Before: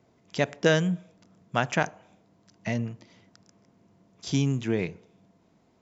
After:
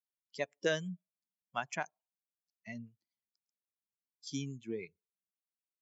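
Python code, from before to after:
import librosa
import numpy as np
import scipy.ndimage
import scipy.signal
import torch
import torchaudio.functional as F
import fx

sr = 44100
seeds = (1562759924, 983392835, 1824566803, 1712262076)

y = fx.bin_expand(x, sr, power=2.0)
y = scipy.signal.sosfilt(scipy.signal.butter(2, 120.0, 'highpass', fs=sr, output='sos'), y)
y = fx.bass_treble(y, sr, bass_db=-7, treble_db=3)
y = F.gain(torch.from_numpy(y), -7.5).numpy()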